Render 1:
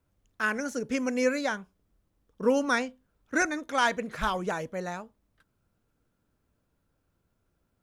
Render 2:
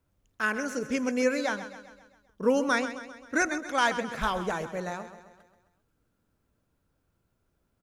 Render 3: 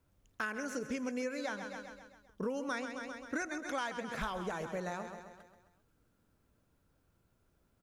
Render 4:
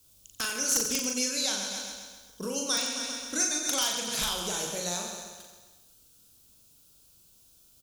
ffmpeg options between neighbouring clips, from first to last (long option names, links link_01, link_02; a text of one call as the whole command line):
ffmpeg -i in.wav -af "aecho=1:1:132|264|396|528|660|792:0.251|0.133|0.0706|0.0374|0.0198|0.0105" out.wav
ffmpeg -i in.wav -af "acompressor=threshold=-36dB:ratio=6,volume=1dB" out.wav
ffmpeg -i in.wav -af "aexciter=amount=9.9:drive=5.6:freq=2900,aeval=exprs='(mod(5.62*val(0)+1,2)-1)/5.62':channel_layout=same,aecho=1:1:40|90|152.5|230.6|328.3:0.631|0.398|0.251|0.158|0.1" out.wav